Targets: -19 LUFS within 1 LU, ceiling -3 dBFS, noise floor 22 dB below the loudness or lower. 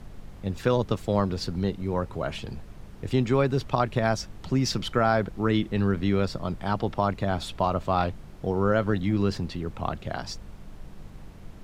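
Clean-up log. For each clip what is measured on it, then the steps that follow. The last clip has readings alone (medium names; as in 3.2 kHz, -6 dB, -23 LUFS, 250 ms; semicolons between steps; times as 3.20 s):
hum 50 Hz; highest harmonic 200 Hz; hum level -45 dBFS; noise floor -45 dBFS; noise floor target -49 dBFS; loudness -27.0 LUFS; peak level -8.5 dBFS; loudness target -19.0 LUFS
-> de-hum 50 Hz, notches 4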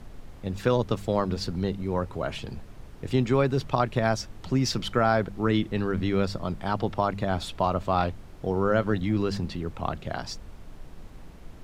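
hum not found; noise floor -45 dBFS; noise floor target -50 dBFS
-> noise print and reduce 6 dB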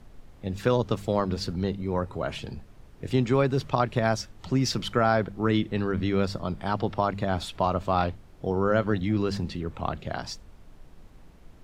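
noise floor -51 dBFS; loudness -27.5 LUFS; peak level -9.0 dBFS; loudness target -19.0 LUFS
-> trim +8.5 dB; peak limiter -3 dBFS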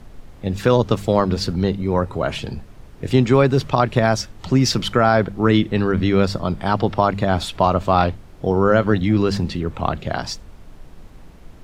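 loudness -19.0 LUFS; peak level -3.0 dBFS; noise floor -42 dBFS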